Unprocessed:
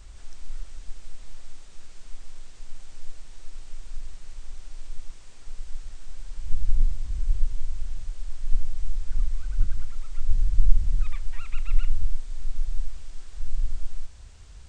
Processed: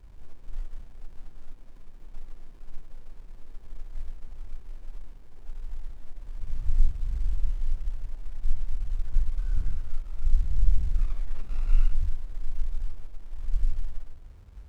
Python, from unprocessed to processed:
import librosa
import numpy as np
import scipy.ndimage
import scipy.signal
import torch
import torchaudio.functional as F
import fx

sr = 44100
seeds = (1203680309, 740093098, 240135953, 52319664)

y = fx.phase_scramble(x, sr, seeds[0], window_ms=200)
y = fx.running_max(y, sr, window=65)